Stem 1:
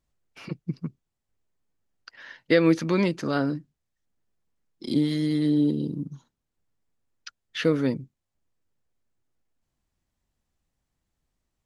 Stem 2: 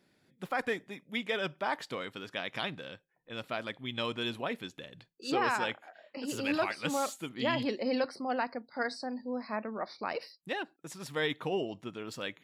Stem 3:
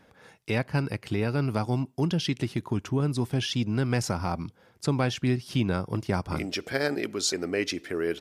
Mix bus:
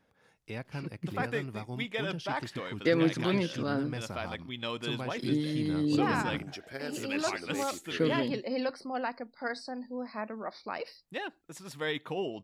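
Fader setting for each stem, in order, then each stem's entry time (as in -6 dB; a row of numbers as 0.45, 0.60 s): -6.5, -1.5, -12.5 dB; 0.35, 0.65, 0.00 s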